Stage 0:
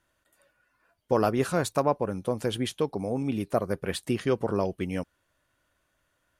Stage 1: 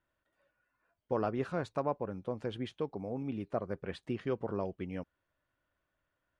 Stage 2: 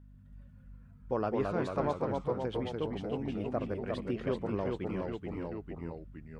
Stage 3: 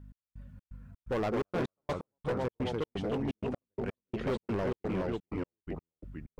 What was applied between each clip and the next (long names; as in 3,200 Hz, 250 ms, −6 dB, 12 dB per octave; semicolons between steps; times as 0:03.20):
Bessel low-pass filter 2,600 Hz, order 2; level −8.5 dB
mains hum 50 Hz, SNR 16 dB; delay with pitch and tempo change per echo 146 ms, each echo −1 semitone, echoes 3
gate pattern "x..xx.xx.xxx.x.." 127 BPM −60 dB; hard clipping −32 dBFS, distortion −9 dB; level +4.5 dB